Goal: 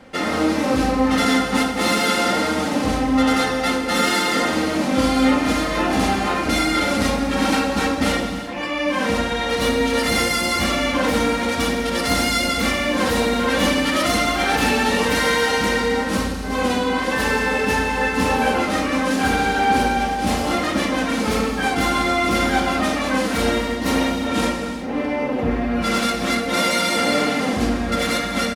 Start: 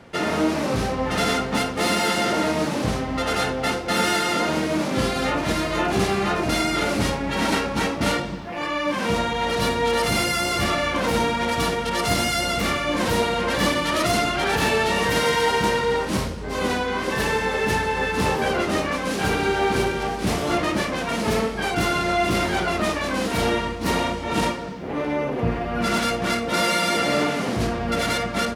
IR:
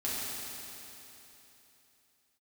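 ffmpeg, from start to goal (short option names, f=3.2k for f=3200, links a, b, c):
-filter_complex "[0:a]aecho=1:1:3.8:0.56,asplit=2[a][b];[1:a]atrim=start_sample=2205,afade=t=out:st=0.43:d=0.01,atrim=end_sample=19404[c];[b][c]afir=irnorm=-1:irlink=0,volume=-7.5dB[d];[a][d]amix=inputs=2:normalize=0,volume=-2dB"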